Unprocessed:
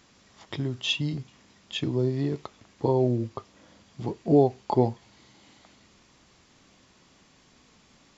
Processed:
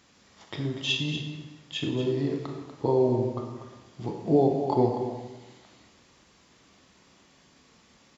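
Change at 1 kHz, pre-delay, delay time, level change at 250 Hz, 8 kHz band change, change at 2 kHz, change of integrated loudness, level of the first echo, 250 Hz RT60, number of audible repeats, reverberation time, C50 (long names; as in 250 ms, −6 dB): 0.0 dB, 24 ms, 242 ms, −0.5 dB, can't be measured, +1.0 dB, −0.5 dB, −10.0 dB, 1.2 s, 1, 1.1 s, 3.5 dB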